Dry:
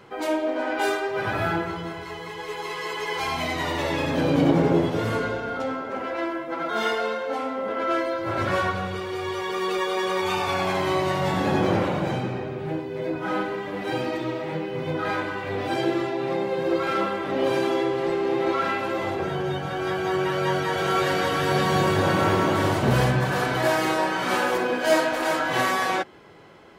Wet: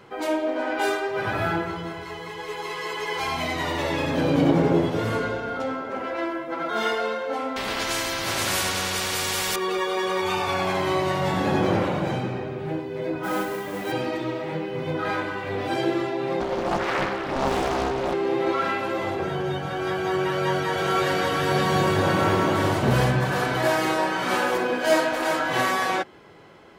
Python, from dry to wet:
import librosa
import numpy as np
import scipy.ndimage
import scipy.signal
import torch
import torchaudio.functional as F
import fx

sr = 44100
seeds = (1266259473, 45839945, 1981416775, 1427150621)

y = fx.spectral_comp(x, sr, ratio=4.0, at=(7.56, 9.56))
y = fx.mod_noise(y, sr, seeds[0], snr_db=17, at=(13.23, 13.92))
y = fx.doppler_dist(y, sr, depth_ms=0.94, at=(16.4, 18.14))